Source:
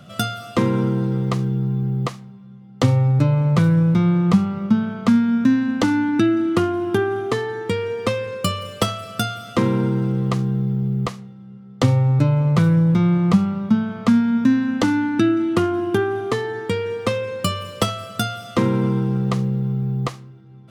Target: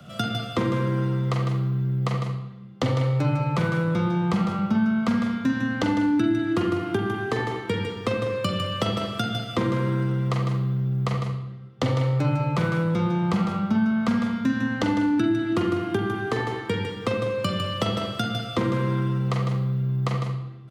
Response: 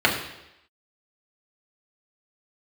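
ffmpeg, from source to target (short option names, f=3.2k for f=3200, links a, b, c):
-filter_complex "[0:a]aecho=1:1:153:0.398,asplit=2[a][b];[1:a]atrim=start_sample=2205,adelay=42[c];[b][c]afir=irnorm=-1:irlink=0,volume=-19.5dB[d];[a][d]amix=inputs=2:normalize=0,acrossover=split=120|300|5800[e][f][g][h];[e]acompressor=threshold=-30dB:ratio=4[i];[f]acompressor=threshold=-26dB:ratio=4[j];[g]acompressor=threshold=-23dB:ratio=4[k];[h]acompressor=threshold=-51dB:ratio=4[l];[i][j][k][l]amix=inputs=4:normalize=0,volume=-2dB"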